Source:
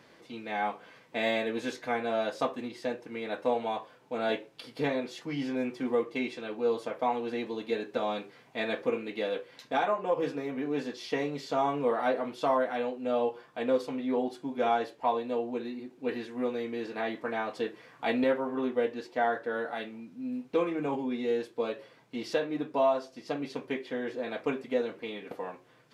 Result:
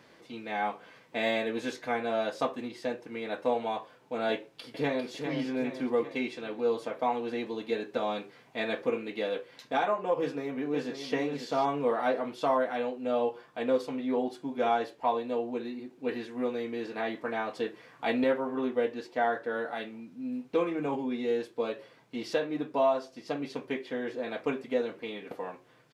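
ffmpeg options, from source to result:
-filter_complex "[0:a]asplit=2[s0][s1];[s1]afade=t=in:st=4.34:d=0.01,afade=t=out:st=5.09:d=0.01,aecho=0:1:400|800|1200|1600|2000|2400|2800:0.473151|0.260233|0.143128|0.0787205|0.0432963|0.023813|0.0130971[s2];[s0][s2]amix=inputs=2:normalize=0,asplit=2[s3][s4];[s4]afade=t=in:st=10.19:d=0.01,afade=t=out:st=11.11:d=0.01,aecho=0:1:540|1080:0.421697|0.0421697[s5];[s3][s5]amix=inputs=2:normalize=0"

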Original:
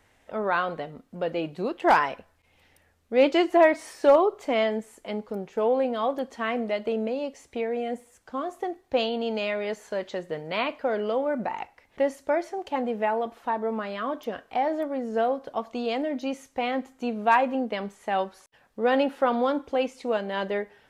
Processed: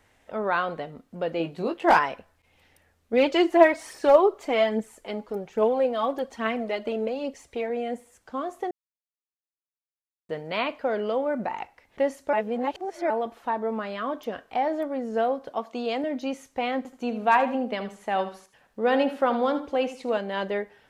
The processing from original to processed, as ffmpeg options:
-filter_complex "[0:a]asettb=1/sr,asplit=3[s0][s1][s2];[s0]atrim=end=1.384[s3];[s1]atrim=start=1.38:end=1.99,asetpts=PTS-STARTPTS,afade=t=in:d=0.004:c=qsin,afade=t=out:st=0.606:d=0.004:c=qsin,asplit=2[s4][s5];[s5]adelay=18,volume=0.531[s6];[s4][s6]amix=inputs=2:normalize=0,atrim=end_sample=26901[s7];[s2]atrim=start=1.986[s8];[s3][s7]acrossfade=d=0.004:c1=hsin:c2=qsin[s9];[s9][s8]acrossfade=d=0.004:c1=qsin:c2=hsin,asettb=1/sr,asplit=3[s10][s11][s12];[s10]atrim=end=3.134[s13];[s11]atrim=start=3.13:end=7.7,asetpts=PTS-STARTPTS,afade=t=in:d=0.004:c=qsin,afade=t=out:st=4.566:d=0.004:c=qsin,aphaser=in_gain=1:out_gain=1:delay=3.6:decay=0.45:speed=1.2:type=triangular[s14];[s12]atrim=start=7.696[s15];[s13][s14]acrossfade=d=0.004:c1=hsin:c2=qsin[s16];[s16][s15]acrossfade=d=0.004:c1=qsin:c2=hsin,asettb=1/sr,asplit=3[s17][s18][s19];[s17]atrim=end=15.514[s20];[s18]atrim=start=15.51:end=16.04,asetpts=PTS-STARTPTS,afade=t=in:d=0.004:c=qsin,afade=t=out:st=0.526:d=0.004:c=qsin,highpass=180[s21];[s19]atrim=start=16.036[s22];[s20][s21]acrossfade=d=0.004:c1=hsin:c2=qsin[s23];[s23][s22]acrossfade=d=0.004:c1=qsin:c2=hsin,asettb=1/sr,asplit=3[s24][s25][s26];[s24]atrim=end=16.774[s27];[s25]atrim=start=16.77:end=20.18,asetpts=PTS-STARTPTS,afade=t=in:d=0.004:c=qsin,afade=t=out:st=3.406:d=0.004:c=qsin,aecho=1:1:78|156|234:0.251|0.0628|0.0157,atrim=end_sample=150381[s28];[s26]atrim=start=20.176[s29];[s27][s28]acrossfade=d=0.004:c1=hsin:c2=qsin[s30];[s30][s29]acrossfade=d=0.004:c1=qsin:c2=hsin,asplit=5[s31][s32][s33][s34][s35];[s31]atrim=end=8.71,asetpts=PTS-STARTPTS,afade=t=out:st=8.706:d=0.004:c=hsin[s36];[s32]atrim=start=8.71:end=10.29,asetpts=PTS-STARTPTS,volume=0[s37];[s33]atrim=start=10.29:end=12.332,asetpts=PTS-STARTPTS,afade=t=in:d=0.004:c=hsin[s38];[s34]atrim=start=12.328:end=13.102,asetpts=PTS-STARTPTS,areverse[s39];[s35]atrim=start=13.098[s40];[s36][s37][s38]concat=n=3:v=0:a=1[s41];[s41][s39]acrossfade=d=0.004:c1=hsin:c2=hsin[s42];[s42][s40]acrossfade=d=0.004:c1=hsin:c2=hsin"

